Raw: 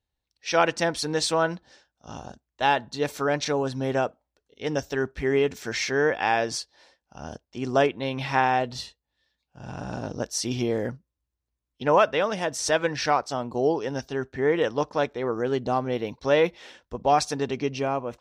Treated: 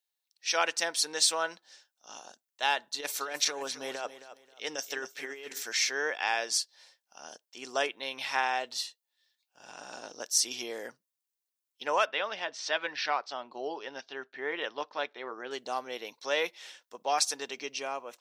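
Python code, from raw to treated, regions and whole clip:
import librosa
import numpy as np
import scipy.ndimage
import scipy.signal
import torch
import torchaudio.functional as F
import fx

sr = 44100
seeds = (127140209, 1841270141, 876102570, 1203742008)

y = fx.chain(x, sr, fx.over_compress(threshold_db=-25.0, ratio=-0.5),
    fx.echo_feedback(ms=267, feedback_pct=27, wet_db=-13.0), at=(2.94, 5.63))
y = fx.chain(y, sr, fx.lowpass(hz=4100.0, slope=24),
    fx.notch(hz=480.0, q=12.0), at=(12.05, 15.51))
y = scipy.signal.sosfilt(scipy.signal.butter(2, 310.0, 'highpass', fs=sr, output='sos'), y)
y = fx.tilt_eq(y, sr, slope=4.0)
y = y * librosa.db_to_amplitude(-7.0)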